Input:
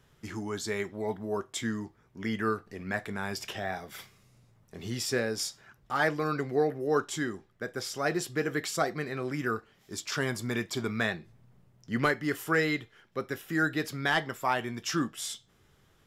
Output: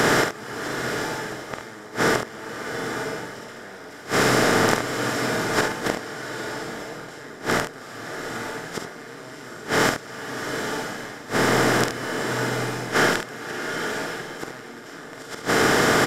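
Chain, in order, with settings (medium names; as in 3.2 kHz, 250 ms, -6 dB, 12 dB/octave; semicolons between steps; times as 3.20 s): spectral levelling over time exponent 0.2; inverted gate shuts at -12 dBFS, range -28 dB; 3.31–3.99 s: phase dispersion lows, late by 58 ms, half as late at 820 Hz; on a send: early reflections 47 ms -7 dB, 72 ms -8.5 dB; on the sum: swelling reverb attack 930 ms, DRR 5 dB; trim +5.5 dB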